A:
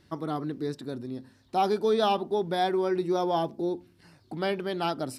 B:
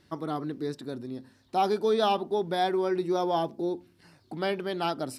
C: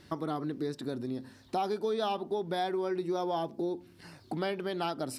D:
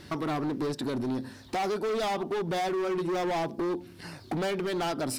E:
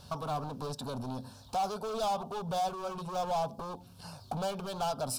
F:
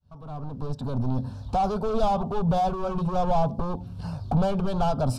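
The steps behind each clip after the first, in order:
low shelf 140 Hz -4.5 dB
compressor 3:1, threshold -39 dBFS, peak gain reduction 13.5 dB; gain +6 dB
hard clip -35 dBFS, distortion -8 dB; gain +8 dB
fixed phaser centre 810 Hz, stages 4
opening faded in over 1.48 s; RIAA curve playback; gain +6 dB

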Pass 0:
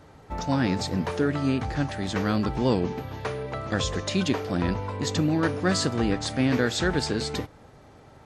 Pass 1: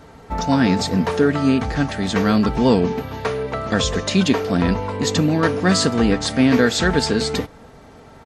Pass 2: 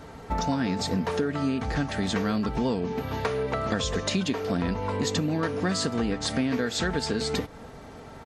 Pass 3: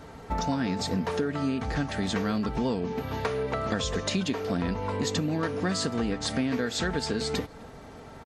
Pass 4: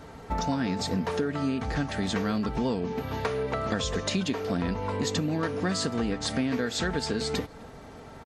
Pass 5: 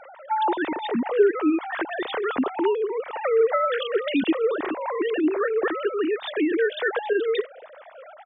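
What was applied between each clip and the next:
comb 4.4 ms, depth 39%; gain +7 dB
compressor, threshold -24 dBFS, peak gain reduction 13 dB
outdoor echo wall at 44 m, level -28 dB; gain -1.5 dB
nothing audible
sine-wave speech; gain +5 dB

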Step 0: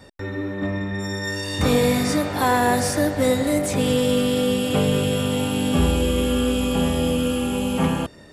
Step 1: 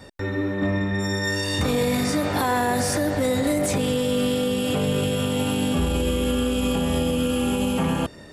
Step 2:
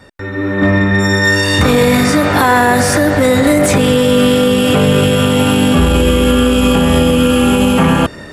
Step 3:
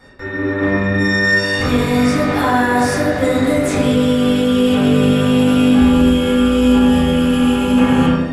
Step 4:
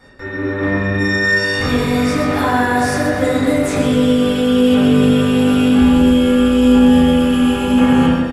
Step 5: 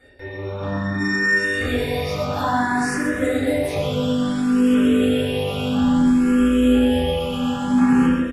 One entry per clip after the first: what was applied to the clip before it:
limiter -16.5 dBFS, peak gain reduction 9.5 dB; gain +2.5 dB
EQ curve 830 Hz 0 dB, 1400 Hz +5 dB, 4600 Hz -2 dB; AGC gain up to 13 dB; in parallel at -6 dB: one-sided clip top -8.5 dBFS; on the sum: gain -2 dB
vocal rider within 5 dB 0.5 s; reverb RT60 1.2 s, pre-delay 4 ms, DRR -6 dB; gain -12.5 dB
feedback echo 0.124 s, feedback 48%, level -10 dB; gain -1 dB
endless phaser +0.59 Hz; gain -3 dB

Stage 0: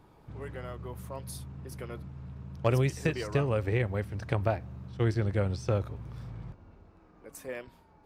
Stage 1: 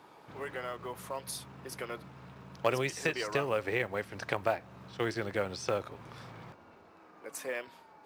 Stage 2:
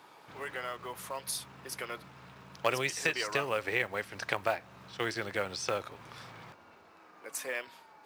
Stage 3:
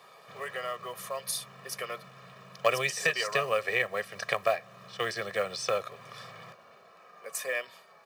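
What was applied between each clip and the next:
weighting filter A; in parallel at +2 dB: compressor, threshold -43 dBFS, peak gain reduction 17.5 dB; on the sum: short-mantissa float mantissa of 4-bit
tilt shelf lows -4.5 dB, about 860 Hz
HPF 130 Hz 24 dB/oct; comb 1.7 ms, depth 92%

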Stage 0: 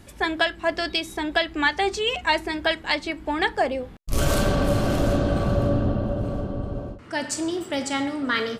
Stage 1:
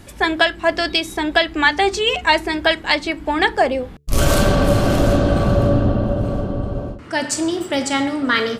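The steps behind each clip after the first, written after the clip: de-hum 72.71 Hz, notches 6; gain +6.5 dB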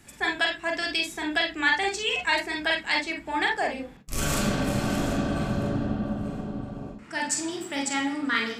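reverb, pre-delay 39 ms, DRR 1.5 dB; gain -8.5 dB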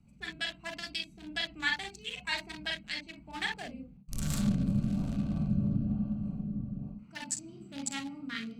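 Wiener smoothing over 25 samples; EQ curve 110 Hz 0 dB, 190 Hz +6 dB, 360 Hz -15 dB, 4100 Hz +2 dB; rotary speaker horn 1.1 Hz; gain -2.5 dB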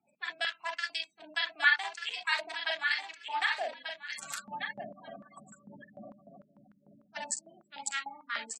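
feedback echo 1.189 s, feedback 20%, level -7 dB; spectral gate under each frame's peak -30 dB strong; stepped high-pass 6.7 Hz 640–1500 Hz

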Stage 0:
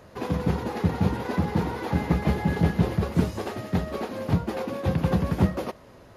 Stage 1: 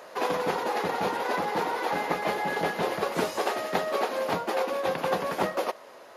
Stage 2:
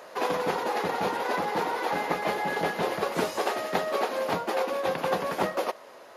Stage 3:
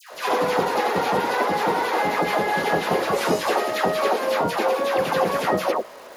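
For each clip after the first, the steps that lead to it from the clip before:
Chebyshev high-pass 600 Hz, order 2; vocal rider 0.5 s; gain +6 dB
nothing audible
crackle 270/s -42 dBFS; dispersion lows, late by 0.122 s, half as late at 1200 Hz; gain +6.5 dB

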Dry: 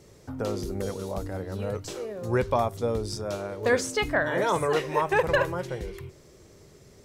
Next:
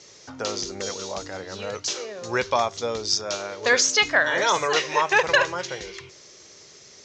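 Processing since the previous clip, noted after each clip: steep low-pass 6800 Hz 72 dB/oct; tilt +4.5 dB/oct; gain +4.5 dB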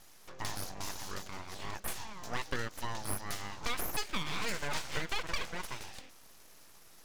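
compressor 6:1, threshold -22 dBFS, peak gain reduction 8.5 dB; full-wave rectifier; gain -7 dB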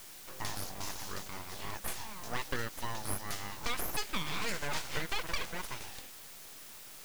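added noise white -51 dBFS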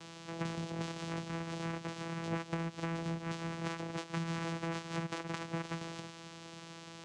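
compressor, threshold -38 dBFS, peak gain reduction 10.5 dB; vocoder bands 4, saw 166 Hz; gain +8.5 dB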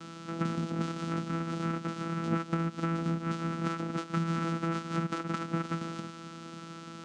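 small resonant body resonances 240/1300 Hz, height 18 dB, ringing for 50 ms

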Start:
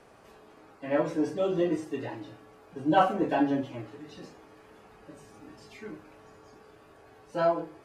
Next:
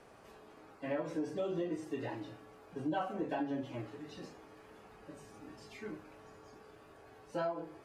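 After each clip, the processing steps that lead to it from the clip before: compressor 5:1, threshold -31 dBFS, peak gain reduction 13.5 dB; gain -2.5 dB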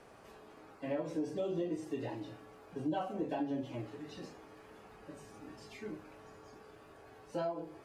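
dynamic EQ 1500 Hz, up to -7 dB, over -55 dBFS, Q 1.1; gain +1 dB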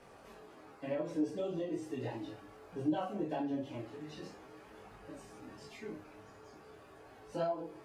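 detuned doubles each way 14 cents; gain +4 dB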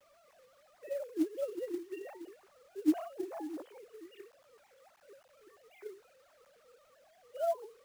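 sine-wave speech; companded quantiser 6-bit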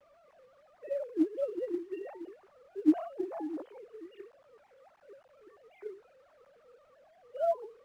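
LPF 1300 Hz 6 dB/oct; gain +4 dB

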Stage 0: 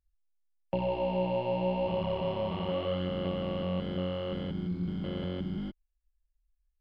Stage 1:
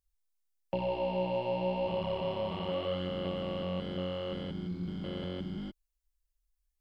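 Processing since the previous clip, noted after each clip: tone controls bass -3 dB, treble +7 dB; gain -1.5 dB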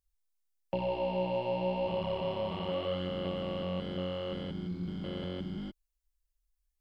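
nothing audible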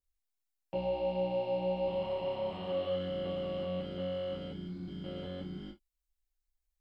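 non-linear reverb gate 90 ms falling, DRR -3 dB; gain -8.5 dB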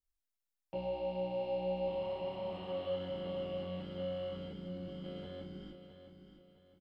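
feedback echo 0.662 s, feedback 36%, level -10 dB; gain -4.5 dB

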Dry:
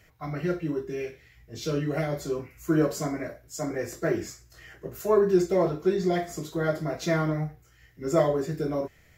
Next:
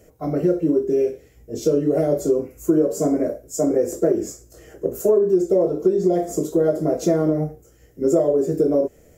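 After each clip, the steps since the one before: graphic EQ 125/250/500/1000/2000/4000/8000 Hz -5/+6/+12/-6/-11/-10/+6 dB; compressor 6:1, threshold -21 dBFS, peak gain reduction 13 dB; gain +6.5 dB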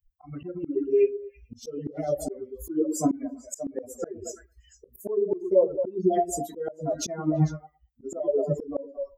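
per-bin expansion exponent 3; delay with a stepping band-pass 0.112 s, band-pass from 260 Hz, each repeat 1.4 oct, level -8 dB; auto swell 0.384 s; gain +8.5 dB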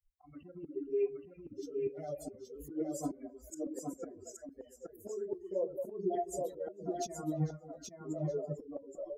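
flange 0.31 Hz, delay 1.3 ms, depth 9.3 ms, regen -42%; echo 0.822 s -4 dB; gain -8.5 dB

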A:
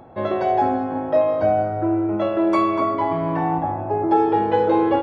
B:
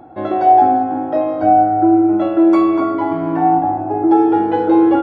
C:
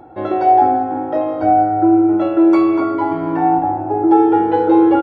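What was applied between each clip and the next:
small resonant body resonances 310/750/1400 Hz, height 15 dB, ringing for 75 ms; gain -1.5 dB
comb 2.2 ms, depth 34%

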